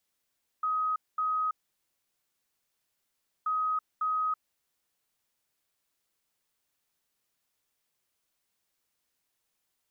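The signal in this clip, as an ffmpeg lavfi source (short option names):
-f lavfi -i "aevalsrc='0.0501*sin(2*PI*1260*t)*clip(min(mod(mod(t,2.83),0.55),0.33-mod(mod(t,2.83),0.55))/0.005,0,1)*lt(mod(t,2.83),1.1)':d=5.66:s=44100"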